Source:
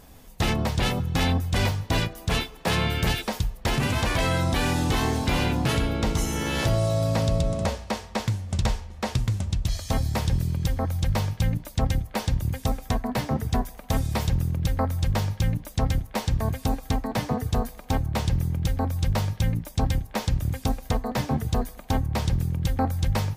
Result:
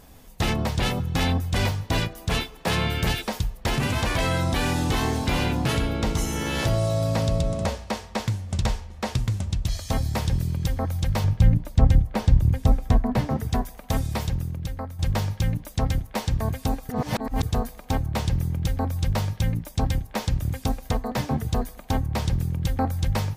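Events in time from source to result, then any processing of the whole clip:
0:11.24–0:13.30: spectral tilt −2 dB per octave
0:13.96–0:14.99: fade out, to −11.5 dB
0:16.89–0:17.43: reverse

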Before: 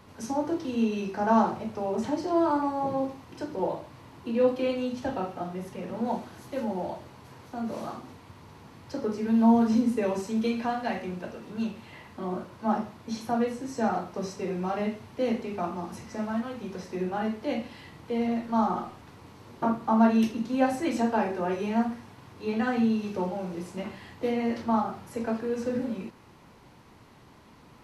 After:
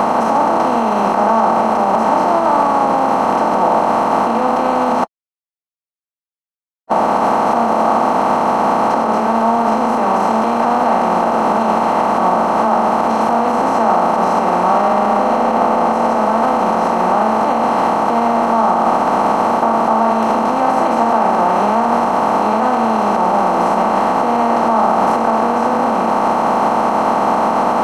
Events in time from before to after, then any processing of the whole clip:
0:05.04–0:06.91: silence
0:14.70–0:15.38: thrown reverb, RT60 2.2 s, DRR −9.5 dB
whole clip: compressor on every frequency bin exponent 0.2; brickwall limiter −12.5 dBFS; flat-topped bell 950 Hz +10.5 dB 1.2 octaves; level +1.5 dB

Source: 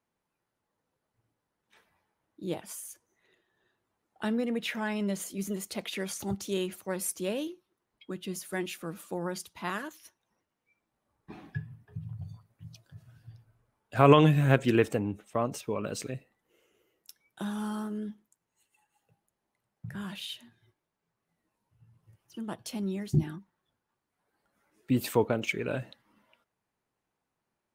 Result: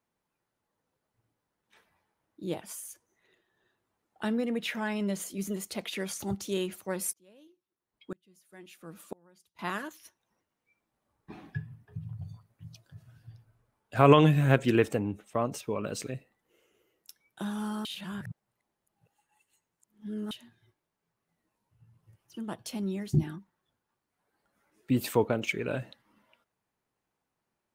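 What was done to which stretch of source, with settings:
0:07.13–0:09.59: tremolo with a ramp in dB swelling 1 Hz, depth 32 dB
0:17.85–0:20.31: reverse

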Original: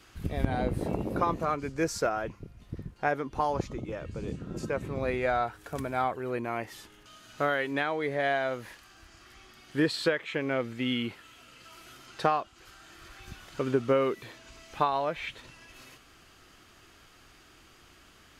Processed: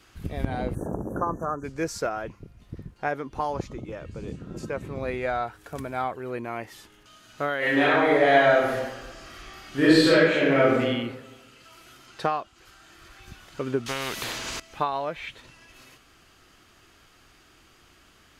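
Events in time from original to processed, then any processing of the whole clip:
0:00.75–0:01.64: time-frequency box erased 1,800–5,700 Hz
0:07.58–0:10.80: thrown reverb, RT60 1.2 s, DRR −10 dB
0:13.86–0:14.60: every bin compressed towards the loudest bin 4 to 1

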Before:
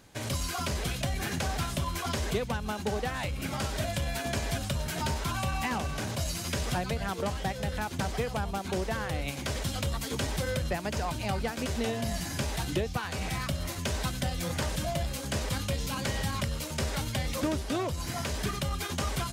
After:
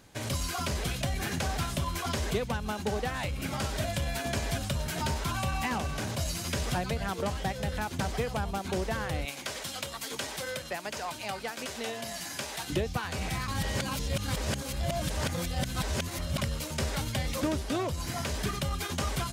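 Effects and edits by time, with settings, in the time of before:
0:09.25–0:12.70: high-pass filter 660 Hz 6 dB per octave
0:13.48–0:16.38: reverse

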